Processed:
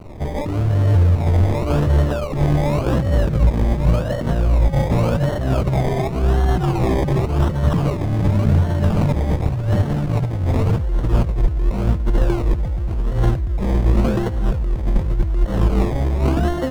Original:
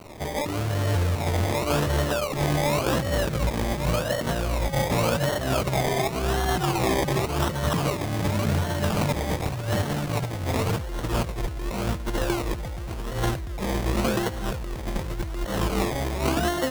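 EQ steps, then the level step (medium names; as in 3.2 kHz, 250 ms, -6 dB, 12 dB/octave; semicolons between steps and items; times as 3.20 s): tilt EQ -3 dB/octave; 0.0 dB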